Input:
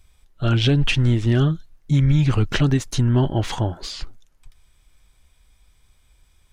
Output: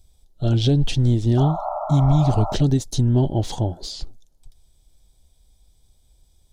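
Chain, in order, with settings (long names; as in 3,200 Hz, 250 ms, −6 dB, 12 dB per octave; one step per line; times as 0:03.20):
sound drawn into the spectrogram noise, 0:01.37–0:02.55, 580–1,400 Hz −23 dBFS
flat-topped bell 1,700 Hz −14.5 dB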